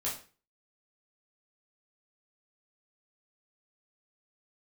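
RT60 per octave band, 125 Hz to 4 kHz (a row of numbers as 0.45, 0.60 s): 0.45, 0.40, 0.40, 0.35, 0.35, 0.35 s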